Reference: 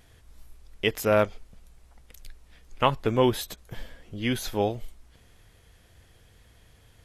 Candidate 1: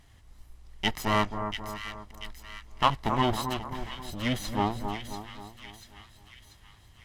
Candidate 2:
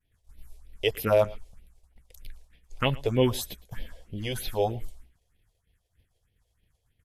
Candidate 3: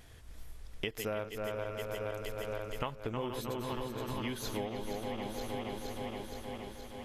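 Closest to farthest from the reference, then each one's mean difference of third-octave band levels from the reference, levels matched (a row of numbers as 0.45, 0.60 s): 2, 1, 3; 4.5, 8.5, 12.5 dB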